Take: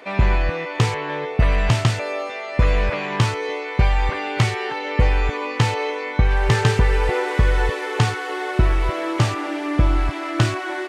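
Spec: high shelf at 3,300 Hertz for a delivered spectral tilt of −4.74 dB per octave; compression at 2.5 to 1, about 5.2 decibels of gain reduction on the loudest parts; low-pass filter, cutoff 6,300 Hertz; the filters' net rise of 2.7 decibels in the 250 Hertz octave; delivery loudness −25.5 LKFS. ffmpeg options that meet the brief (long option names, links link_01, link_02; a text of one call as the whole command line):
ffmpeg -i in.wav -af "lowpass=6300,equalizer=frequency=250:width_type=o:gain=4,highshelf=frequency=3300:gain=3.5,acompressor=threshold=-18dB:ratio=2.5,volume=-2dB" out.wav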